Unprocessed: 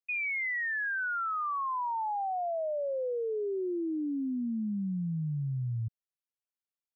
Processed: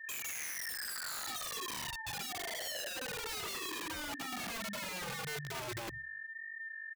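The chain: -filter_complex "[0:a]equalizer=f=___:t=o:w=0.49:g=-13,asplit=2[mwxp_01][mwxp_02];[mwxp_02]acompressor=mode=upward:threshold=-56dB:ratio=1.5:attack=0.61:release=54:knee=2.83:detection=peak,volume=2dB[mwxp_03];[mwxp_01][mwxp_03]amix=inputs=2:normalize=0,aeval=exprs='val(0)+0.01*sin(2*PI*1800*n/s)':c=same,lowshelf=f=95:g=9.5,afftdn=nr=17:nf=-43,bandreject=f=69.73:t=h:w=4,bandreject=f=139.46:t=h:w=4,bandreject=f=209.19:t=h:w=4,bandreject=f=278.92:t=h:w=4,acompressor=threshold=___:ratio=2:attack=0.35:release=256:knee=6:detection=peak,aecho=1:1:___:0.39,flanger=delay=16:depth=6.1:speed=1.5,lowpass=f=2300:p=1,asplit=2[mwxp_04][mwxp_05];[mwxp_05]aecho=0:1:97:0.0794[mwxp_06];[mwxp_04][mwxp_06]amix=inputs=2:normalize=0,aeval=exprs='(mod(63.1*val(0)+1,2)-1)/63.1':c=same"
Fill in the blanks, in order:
900, -30dB, 5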